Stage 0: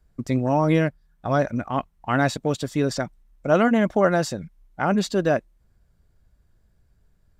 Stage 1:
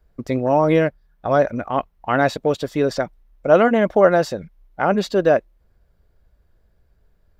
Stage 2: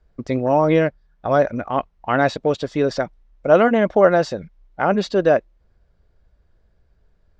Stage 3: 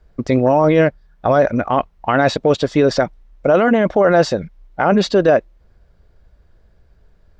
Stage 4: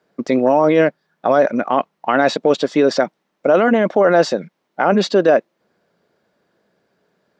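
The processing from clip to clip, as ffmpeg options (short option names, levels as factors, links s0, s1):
-af "equalizer=f=125:t=o:w=1:g=-5,equalizer=f=250:t=o:w=1:g=-3,equalizer=f=500:t=o:w=1:g=5,equalizer=f=8000:t=o:w=1:g=-9,volume=1.41"
-af "lowpass=f=6800:w=0.5412,lowpass=f=6800:w=1.3066"
-af "alimiter=limit=0.237:level=0:latency=1:release=14,volume=2.37"
-af "highpass=f=190:w=0.5412,highpass=f=190:w=1.3066"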